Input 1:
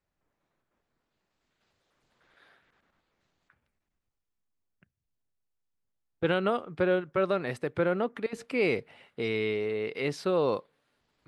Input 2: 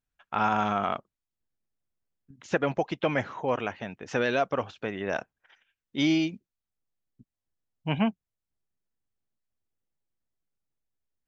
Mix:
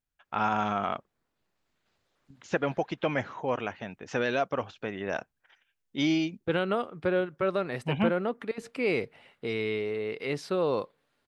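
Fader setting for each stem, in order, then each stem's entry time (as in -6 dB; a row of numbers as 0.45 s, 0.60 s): -1.0 dB, -2.0 dB; 0.25 s, 0.00 s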